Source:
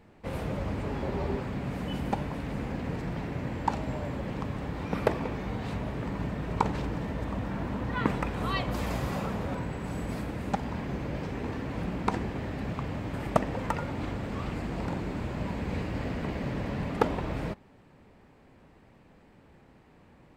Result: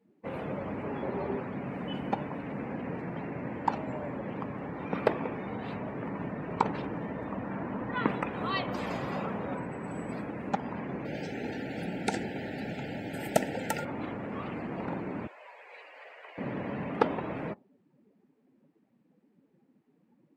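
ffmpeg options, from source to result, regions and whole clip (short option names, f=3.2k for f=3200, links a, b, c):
-filter_complex "[0:a]asettb=1/sr,asplit=3[a][b][c];[a]atrim=end=11.054[d];[b]atrim=start=11.05:end=13.85,asetpts=PTS-STARTPTS,afade=t=in:d=0.004:c=qsin,afade=t=out:st=2.796:d=0.004:c=qsin,asuperstop=centerf=1100:order=12:qfactor=2.4,aemphasis=mode=production:type=75kf[e];[c]atrim=start=13.846[f];[d][e]acrossfade=d=0.004:c1=hsin:c2=qsin[g];[g][f]acrossfade=d=0.004:c1=qsin:c2=hsin,asettb=1/sr,asplit=3[h][i][j];[h]atrim=end=15.274[k];[i]atrim=start=15.27:end=16.38,asetpts=PTS-STARTPTS,afade=t=in:d=0.004:c=qsin,afade=t=out:st=1.106:d=0.004:c=qsin,highpass=f=570:w=0.5412,highpass=f=570:w=1.3066,equalizer=f=730:t=o:w=2.6:g=-8.5[l];[j]atrim=start=16.376[m];[k][l]acrossfade=d=0.004:c1=hsin:c2=qsin[n];[n][m]acrossfade=d=0.004:c1=qsin:c2=hsin,highpass=180,afftdn=nr=20:nf=-48"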